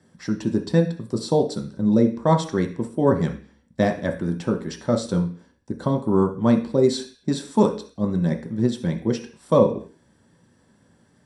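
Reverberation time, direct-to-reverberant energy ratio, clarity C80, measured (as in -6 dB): 0.45 s, 2.5 dB, 16.0 dB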